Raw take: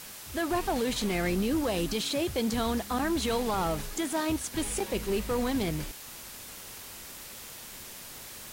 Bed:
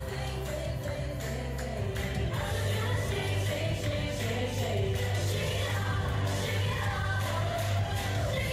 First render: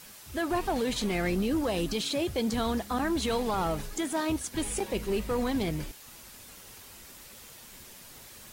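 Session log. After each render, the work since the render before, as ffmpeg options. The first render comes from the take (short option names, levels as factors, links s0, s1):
-af "afftdn=nr=6:nf=-45"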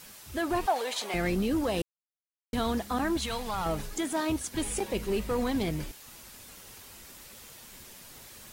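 -filter_complex "[0:a]asettb=1/sr,asplit=3[s0][s1][s2];[s0]atrim=end=0.664[s3];[s1]atrim=start=0.66:end=1.14,asetpts=PTS-STARTPTS,afade=t=in:d=0.004:c=qsin,afade=t=out:st=0.476:d=0.004:c=qsin,highpass=f=700:t=q:w=1.9[s4];[s2]atrim=start=1.136[s5];[s3][s4]acrossfade=d=0.004:c1=hsin:c2=qsin[s6];[s6][s5]acrossfade=d=0.004:c1=qsin:c2=hsin,asettb=1/sr,asplit=3[s7][s8][s9];[s7]atrim=end=3.174[s10];[s8]atrim=start=3.17:end=3.66,asetpts=PTS-STARTPTS,afade=t=in:d=0.004:c=qsin,afade=t=out:st=0.486:d=0.004:c=qsin,equalizer=f=340:t=o:w=1.4:g=-13[s11];[s9]atrim=start=3.656[s12];[s10][s11]acrossfade=d=0.004:c1=hsin:c2=qsin[s13];[s13][s12]acrossfade=d=0.004:c1=qsin:c2=hsin,asplit=3[s14][s15][s16];[s14]atrim=end=1.82,asetpts=PTS-STARTPTS,afade=t=out:st=1.816:d=0.004:c=hsin[s17];[s15]atrim=start=1.82:end=2.53,asetpts=PTS-STARTPTS,volume=0[s18];[s16]atrim=start=2.53,asetpts=PTS-STARTPTS,afade=t=in:d=0.004:c=hsin[s19];[s17][s18][s19]concat=n=3:v=0:a=1"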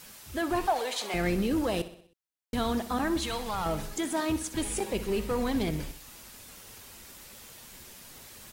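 -af "aecho=1:1:63|126|189|252|315:0.2|0.104|0.054|0.0281|0.0146"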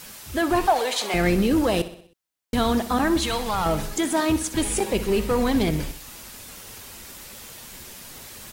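-af "volume=2.37"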